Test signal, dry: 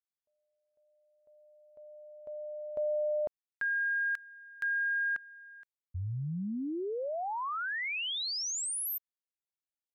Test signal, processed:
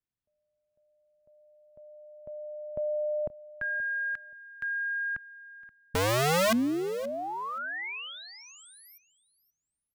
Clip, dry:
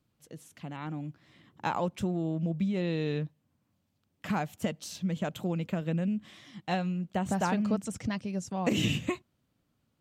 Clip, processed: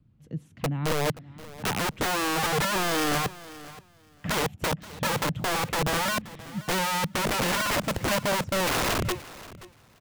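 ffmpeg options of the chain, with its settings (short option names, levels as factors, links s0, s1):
-filter_complex "[0:a]acrossover=split=2600[s0][s1];[s1]acompressor=threshold=0.00794:ratio=4:attack=1:release=60[s2];[s0][s2]amix=inputs=2:normalize=0,bass=f=250:g=10,treble=f=4000:g=-12,acrossover=split=300|4000[s3][s4][s5];[s3]acontrast=61[s6];[s6][s4][s5]amix=inputs=3:normalize=0,aeval=exprs='(mod(11.2*val(0)+1,2)-1)/11.2':c=same,aecho=1:1:527|1054:0.126|0.0214"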